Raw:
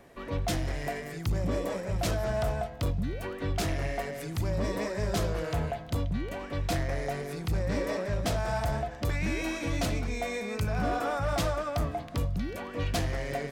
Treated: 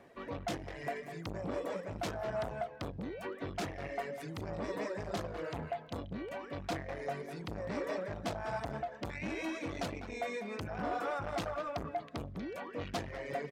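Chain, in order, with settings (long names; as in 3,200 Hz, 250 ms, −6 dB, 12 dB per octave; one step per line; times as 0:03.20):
low-pass filter 3,400 Hz 6 dB per octave
reverb reduction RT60 0.87 s
high-pass filter 150 Hz 6 dB per octave
far-end echo of a speakerphone 200 ms, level −10 dB
saturating transformer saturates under 640 Hz
level −2 dB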